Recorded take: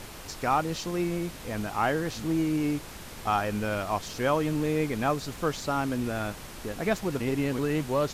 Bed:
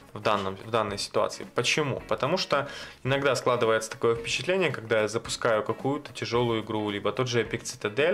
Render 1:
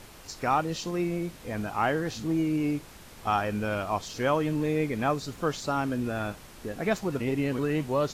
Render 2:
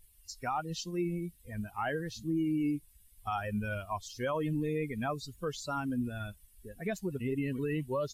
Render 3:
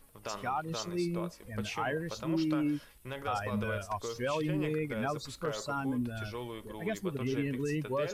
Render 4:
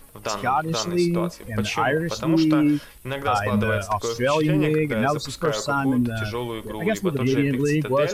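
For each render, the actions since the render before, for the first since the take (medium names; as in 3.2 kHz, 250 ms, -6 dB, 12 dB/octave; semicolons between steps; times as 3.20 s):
noise print and reduce 6 dB
expander on every frequency bin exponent 2; peak limiter -24.5 dBFS, peak gain reduction 8.5 dB
add bed -15.5 dB
trim +12 dB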